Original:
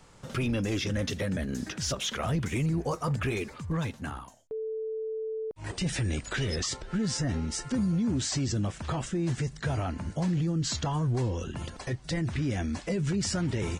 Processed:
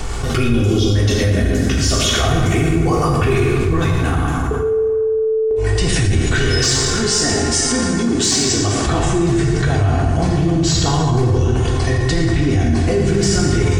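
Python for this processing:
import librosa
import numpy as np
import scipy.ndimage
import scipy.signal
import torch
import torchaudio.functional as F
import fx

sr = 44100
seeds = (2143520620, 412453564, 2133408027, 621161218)

y = fx.spec_erase(x, sr, start_s=0.48, length_s=0.45, low_hz=1400.0, high_hz=2800.0)
y = fx.bass_treble(y, sr, bass_db=-13, treble_db=3, at=(6.46, 8.87))
y = y + 10.0 ** (-10.5 / 20.0) * np.pad(y, (int(115 * sr / 1000.0), 0))[:len(y)]
y = np.clip(y, -10.0 ** (-22.0 / 20.0), 10.0 ** (-22.0 / 20.0))
y = fx.low_shelf(y, sr, hz=120.0, db=9.0)
y = y + 0.56 * np.pad(y, (int(2.7 * sr / 1000.0), 0))[:len(y)]
y = fx.rev_plate(y, sr, seeds[0], rt60_s=1.9, hf_ratio=0.65, predelay_ms=0, drr_db=-2.5)
y = fx.env_flatten(y, sr, amount_pct=70)
y = y * 10.0 ** (3.0 / 20.0)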